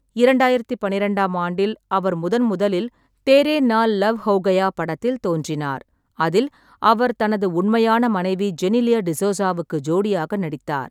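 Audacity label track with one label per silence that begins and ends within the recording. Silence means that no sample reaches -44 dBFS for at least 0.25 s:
2.890000	3.270000	silence
5.820000	6.180000	silence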